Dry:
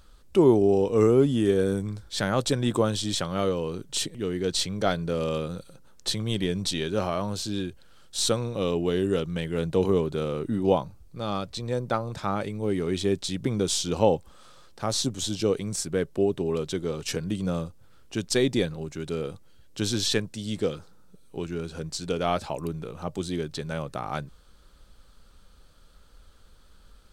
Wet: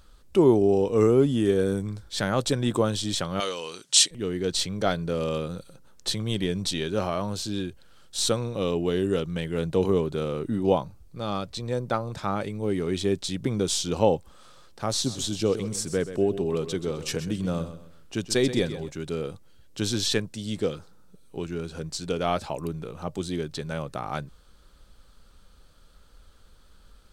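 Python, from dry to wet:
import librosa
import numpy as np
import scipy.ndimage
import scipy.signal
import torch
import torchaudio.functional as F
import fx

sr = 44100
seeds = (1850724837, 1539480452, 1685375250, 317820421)

y = fx.weighting(x, sr, curve='ITU-R 468', at=(3.4, 4.11))
y = fx.echo_feedback(y, sr, ms=129, feedback_pct=32, wet_db=-12.0, at=(15.04, 18.89), fade=0.02)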